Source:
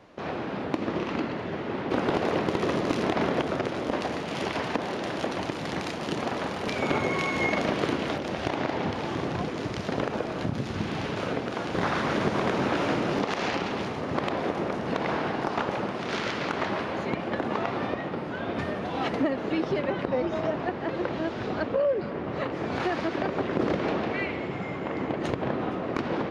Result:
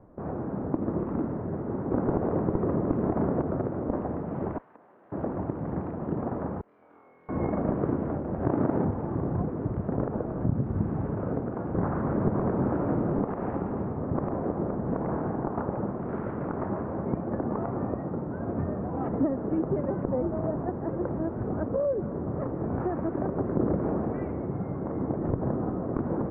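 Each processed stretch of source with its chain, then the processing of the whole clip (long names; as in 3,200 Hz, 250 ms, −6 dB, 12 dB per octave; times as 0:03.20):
0:04.58–0:05.12: first difference + hum removal 61.23 Hz, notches 34
0:06.61–0:07.29: resonant band-pass 6,100 Hz, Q 3.5 + flutter between parallel walls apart 4.1 metres, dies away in 0.87 s
0:08.40–0:08.85: each half-wave held at its own peak + high-pass filter 120 Hz
whole clip: low-pass filter 1,400 Hz 24 dB per octave; spectral tilt −3.5 dB per octave; level −5.5 dB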